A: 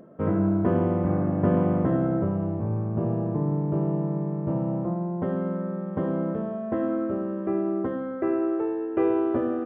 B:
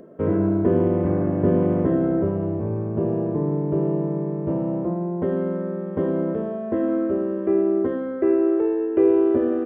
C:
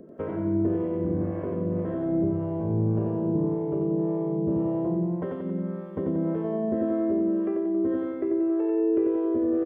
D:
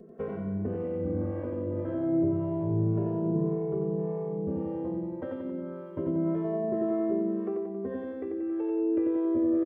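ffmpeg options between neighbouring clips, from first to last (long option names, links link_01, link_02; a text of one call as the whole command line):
ffmpeg -i in.wav -filter_complex "[0:a]equalizer=frequency=125:width_type=o:width=0.33:gain=-10,equalizer=frequency=200:width_type=o:width=0.33:gain=-4,equalizer=frequency=400:width_type=o:width=0.33:gain=6,equalizer=frequency=800:width_type=o:width=0.33:gain=-5,equalizer=frequency=1250:width_type=o:width=0.33:gain=-6,acrossover=split=560[link_01][link_02];[link_02]alimiter=level_in=7dB:limit=-24dB:level=0:latency=1:release=14,volume=-7dB[link_03];[link_01][link_03]amix=inputs=2:normalize=0,volume=4dB" out.wav
ffmpeg -i in.wav -filter_complex "[0:a]acompressor=threshold=-23dB:ratio=6,acrossover=split=460[link_01][link_02];[link_01]aeval=exprs='val(0)*(1-0.7/2+0.7/2*cos(2*PI*1.8*n/s))':channel_layout=same[link_03];[link_02]aeval=exprs='val(0)*(1-0.7/2-0.7/2*cos(2*PI*1.8*n/s))':channel_layout=same[link_04];[link_03][link_04]amix=inputs=2:normalize=0,aecho=1:1:91|182|273|364|455|546|637|728:0.668|0.388|0.225|0.13|0.0756|0.0439|0.0254|0.0148" out.wav
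ffmpeg -i in.wav -filter_complex "[0:a]asplit=2[link_01][link_02];[link_02]adelay=2.3,afreqshift=0.27[link_03];[link_01][link_03]amix=inputs=2:normalize=1" out.wav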